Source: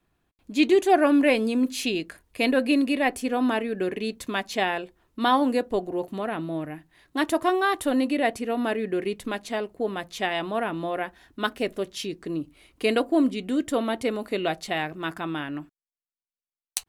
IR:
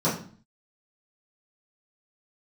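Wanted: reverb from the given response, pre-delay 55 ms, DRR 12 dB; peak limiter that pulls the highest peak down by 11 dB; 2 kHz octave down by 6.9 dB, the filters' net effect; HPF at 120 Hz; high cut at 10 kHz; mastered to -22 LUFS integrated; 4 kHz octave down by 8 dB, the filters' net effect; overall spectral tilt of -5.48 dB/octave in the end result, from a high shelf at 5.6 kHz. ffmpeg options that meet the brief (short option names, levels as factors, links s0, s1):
-filter_complex "[0:a]highpass=120,lowpass=10000,equalizer=f=2000:t=o:g=-7,equalizer=f=4000:t=o:g=-6,highshelf=f=5600:g=-5,alimiter=limit=0.106:level=0:latency=1,asplit=2[s0][s1];[1:a]atrim=start_sample=2205,adelay=55[s2];[s1][s2]afir=irnorm=-1:irlink=0,volume=0.0531[s3];[s0][s3]amix=inputs=2:normalize=0,volume=2.24"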